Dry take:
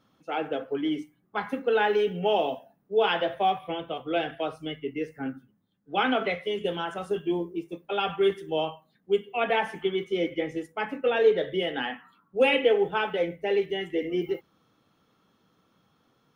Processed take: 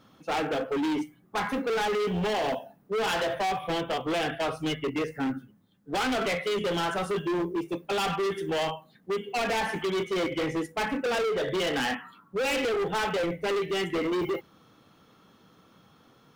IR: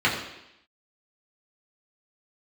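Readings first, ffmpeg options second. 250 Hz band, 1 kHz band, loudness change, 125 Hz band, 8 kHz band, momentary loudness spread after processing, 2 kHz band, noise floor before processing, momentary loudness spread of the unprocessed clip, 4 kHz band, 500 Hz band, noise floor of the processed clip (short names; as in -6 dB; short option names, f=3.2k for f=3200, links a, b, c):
+1.0 dB, -0.5 dB, -1.5 dB, +4.0 dB, n/a, 6 LU, 0.0 dB, -69 dBFS, 11 LU, +0.5 dB, -3.0 dB, -61 dBFS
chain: -af "acompressor=threshold=-24dB:ratio=6,asoftclip=type=hard:threshold=-34dB,volume=8.5dB"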